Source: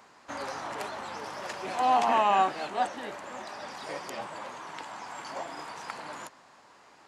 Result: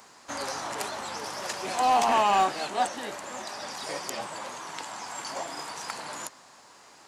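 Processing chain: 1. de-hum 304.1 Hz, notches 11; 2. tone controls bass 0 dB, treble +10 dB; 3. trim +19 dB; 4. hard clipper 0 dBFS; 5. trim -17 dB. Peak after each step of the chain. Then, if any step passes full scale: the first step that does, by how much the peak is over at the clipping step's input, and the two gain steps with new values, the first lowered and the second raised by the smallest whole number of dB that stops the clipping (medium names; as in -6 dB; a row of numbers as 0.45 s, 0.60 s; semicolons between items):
-13.0 dBFS, -10.0 dBFS, +9.0 dBFS, 0.0 dBFS, -17.0 dBFS; step 3, 9.0 dB; step 3 +10 dB, step 5 -8 dB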